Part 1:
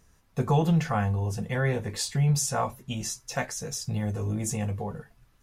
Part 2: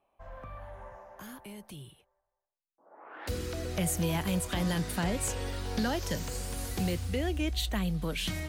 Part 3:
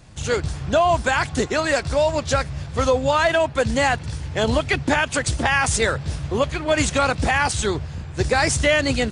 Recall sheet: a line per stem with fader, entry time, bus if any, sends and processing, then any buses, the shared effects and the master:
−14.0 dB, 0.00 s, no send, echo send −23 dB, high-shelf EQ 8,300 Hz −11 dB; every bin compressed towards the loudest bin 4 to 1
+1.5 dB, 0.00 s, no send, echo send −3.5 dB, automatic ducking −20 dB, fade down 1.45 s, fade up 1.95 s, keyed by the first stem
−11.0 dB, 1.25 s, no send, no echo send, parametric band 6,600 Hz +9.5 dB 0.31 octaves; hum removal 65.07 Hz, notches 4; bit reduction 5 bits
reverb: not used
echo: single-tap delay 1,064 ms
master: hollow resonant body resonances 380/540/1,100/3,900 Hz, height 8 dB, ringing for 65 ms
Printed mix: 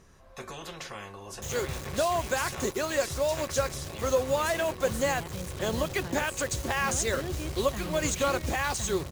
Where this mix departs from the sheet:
stem 2 +1.5 dB → −7.5 dB
stem 3: missing hum removal 65.07 Hz, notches 4

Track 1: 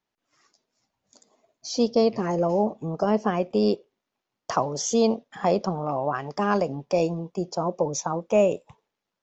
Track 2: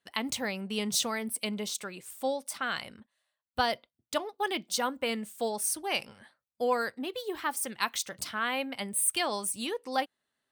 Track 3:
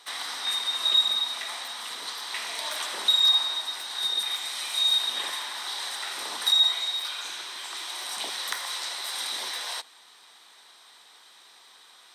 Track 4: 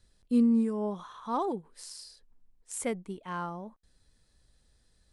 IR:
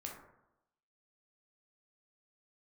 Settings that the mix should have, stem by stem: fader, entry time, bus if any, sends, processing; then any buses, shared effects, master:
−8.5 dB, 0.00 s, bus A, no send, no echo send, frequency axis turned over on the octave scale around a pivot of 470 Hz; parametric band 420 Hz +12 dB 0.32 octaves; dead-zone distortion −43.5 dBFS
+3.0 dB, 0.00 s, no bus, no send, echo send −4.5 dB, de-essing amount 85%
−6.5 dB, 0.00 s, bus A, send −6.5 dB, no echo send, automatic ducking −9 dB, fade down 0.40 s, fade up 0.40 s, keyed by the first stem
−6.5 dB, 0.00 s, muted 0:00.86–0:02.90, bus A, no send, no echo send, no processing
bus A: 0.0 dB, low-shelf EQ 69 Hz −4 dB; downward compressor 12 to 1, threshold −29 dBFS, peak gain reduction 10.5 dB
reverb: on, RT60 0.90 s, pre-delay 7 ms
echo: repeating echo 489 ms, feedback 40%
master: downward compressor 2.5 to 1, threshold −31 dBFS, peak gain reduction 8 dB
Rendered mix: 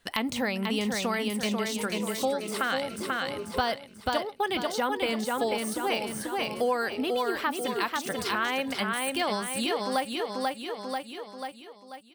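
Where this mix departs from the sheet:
stem 2 +3.0 dB → +14.5 dB
stem 3: muted
reverb: off

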